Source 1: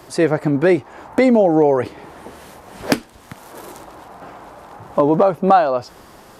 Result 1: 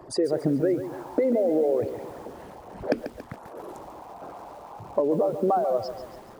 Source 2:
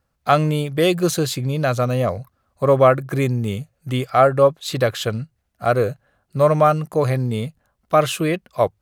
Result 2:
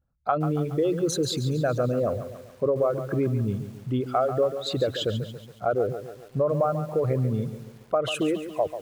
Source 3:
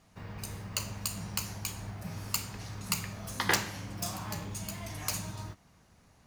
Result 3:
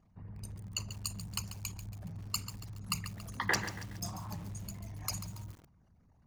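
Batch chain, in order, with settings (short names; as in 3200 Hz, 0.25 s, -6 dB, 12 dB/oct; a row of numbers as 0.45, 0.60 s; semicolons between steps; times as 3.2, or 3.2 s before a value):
formant sharpening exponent 2; compressor 10:1, threshold -16 dBFS; lo-fi delay 0.14 s, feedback 55%, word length 7-bit, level -10.5 dB; gain -3.5 dB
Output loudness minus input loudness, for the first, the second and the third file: -9.0, -7.0, -4.0 LU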